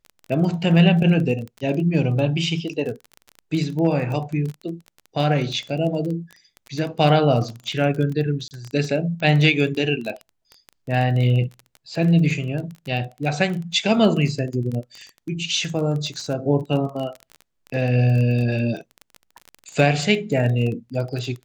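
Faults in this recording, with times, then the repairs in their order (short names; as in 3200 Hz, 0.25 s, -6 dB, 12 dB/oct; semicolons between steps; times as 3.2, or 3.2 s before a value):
crackle 22/s -27 dBFS
8.48–8.51 gap 29 ms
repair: de-click; interpolate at 8.48, 29 ms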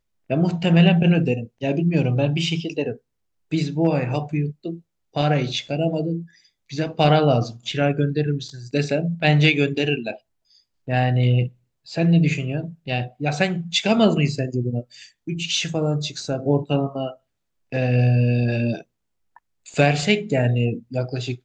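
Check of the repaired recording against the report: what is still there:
none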